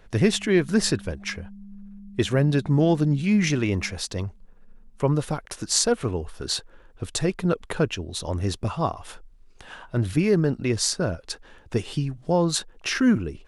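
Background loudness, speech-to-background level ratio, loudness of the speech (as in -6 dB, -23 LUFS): -44.5 LUFS, 20.0 dB, -24.5 LUFS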